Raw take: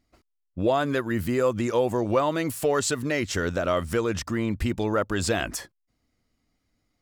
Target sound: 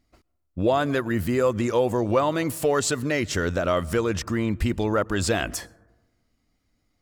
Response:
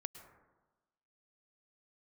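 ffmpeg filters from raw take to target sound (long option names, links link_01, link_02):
-filter_complex "[0:a]asplit=2[link_01][link_02];[1:a]atrim=start_sample=2205,lowshelf=frequency=160:gain=11[link_03];[link_02][link_03]afir=irnorm=-1:irlink=0,volume=-12dB[link_04];[link_01][link_04]amix=inputs=2:normalize=0"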